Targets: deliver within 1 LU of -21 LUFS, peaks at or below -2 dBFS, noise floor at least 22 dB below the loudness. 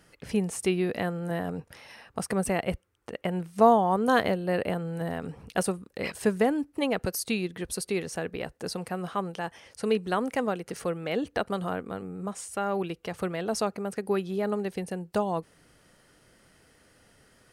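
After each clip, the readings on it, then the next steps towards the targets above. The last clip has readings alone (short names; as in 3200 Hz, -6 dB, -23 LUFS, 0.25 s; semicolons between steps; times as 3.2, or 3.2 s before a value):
loudness -29.5 LUFS; peak -7.0 dBFS; loudness target -21.0 LUFS
-> gain +8.5 dB; limiter -2 dBFS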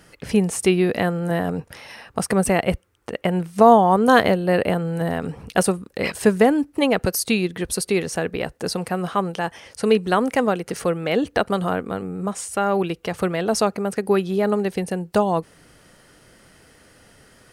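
loudness -21.0 LUFS; peak -2.0 dBFS; noise floor -56 dBFS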